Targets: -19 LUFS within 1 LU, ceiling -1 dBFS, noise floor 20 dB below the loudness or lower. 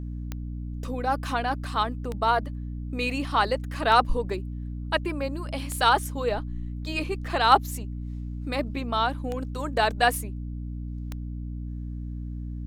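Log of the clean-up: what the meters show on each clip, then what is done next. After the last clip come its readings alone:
clicks found 7; hum 60 Hz; highest harmonic 300 Hz; hum level -31 dBFS; loudness -27.5 LUFS; peak level -3.5 dBFS; loudness target -19.0 LUFS
-> de-click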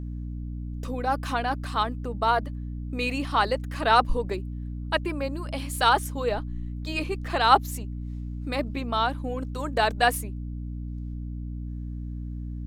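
clicks found 0; hum 60 Hz; highest harmonic 300 Hz; hum level -31 dBFS
-> hum notches 60/120/180/240/300 Hz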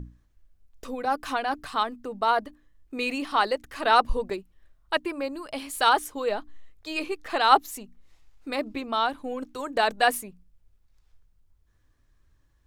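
hum not found; loudness -26.5 LUFS; peak level -4.5 dBFS; loudness target -19.0 LUFS
-> trim +7.5 dB; peak limiter -1 dBFS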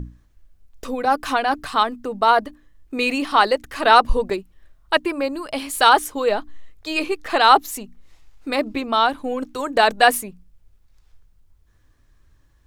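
loudness -19.5 LUFS; peak level -1.0 dBFS; noise floor -57 dBFS

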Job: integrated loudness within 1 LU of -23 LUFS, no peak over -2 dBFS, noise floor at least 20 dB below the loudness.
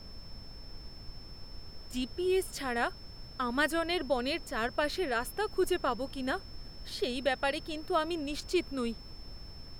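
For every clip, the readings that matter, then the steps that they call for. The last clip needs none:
steady tone 5.3 kHz; tone level -51 dBFS; noise floor -48 dBFS; noise floor target -53 dBFS; loudness -33.0 LUFS; peak level -15.0 dBFS; loudness target -23.0 LUFS
-> band-stop 5.3 kHz, Q 30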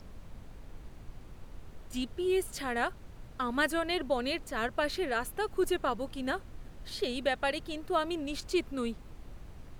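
steady tone not found; noise floor -50 dBFS; noise floor target -53 dBFS
-> noise print and reduce 6 dB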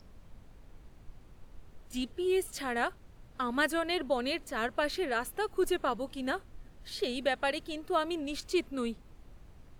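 noise floor -55 dBFS; loudness -33.0 LUFS; peak level -15.0 dBFS; loudness target -23.0 LUFS
-> trim +10 dB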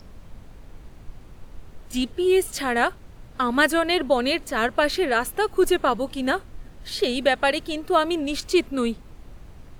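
loudness -23.0 LUFS; peak level -5.0 dBFS; noise floor -45 dBFS

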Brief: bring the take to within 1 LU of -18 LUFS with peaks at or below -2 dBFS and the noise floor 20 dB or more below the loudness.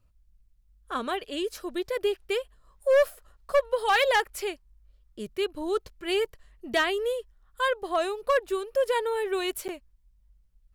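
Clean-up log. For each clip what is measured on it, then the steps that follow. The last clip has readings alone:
clipped samples 0.8%; clipping level -16.5 dBFS; dropouts 1; longest dropout 9.6 ms; loudness -28.0 LUFS; peak level -16.5 dBFS; loudness target -18.0 LUFS
-> clip repair -16.5 dBFS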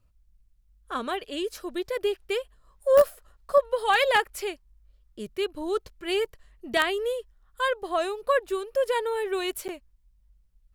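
clipped samples 0.0%; dropouts 1; longest dropout 9.6 ms
-> interpolate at 9.68 s, 9.6 ms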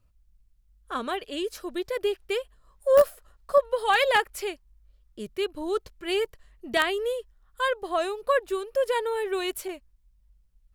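dropouts 0; loudness -27.0 LUFS; peak level -7.5 dBFS; loudness target -18.0 LUFS
-> trim +9 dB; peak limiter -2 dBFS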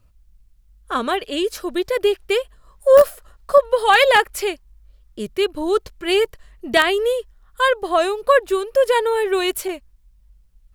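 loudness -18.5 LUFS; peak level -2.0 dBFS; noise floor -55 dBFS

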